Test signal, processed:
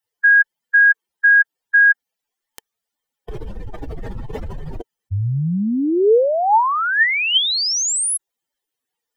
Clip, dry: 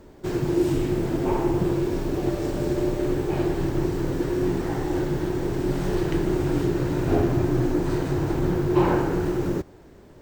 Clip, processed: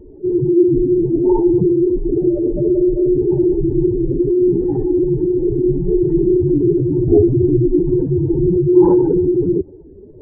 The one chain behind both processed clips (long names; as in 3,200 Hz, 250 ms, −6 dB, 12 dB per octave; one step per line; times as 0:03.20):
expanding power law on the bin magnitudes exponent 2.8
hollow resonant body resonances 450/870/1,800/3,100 Hz, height 9 dB, ringing for 25 ms
level +7 dB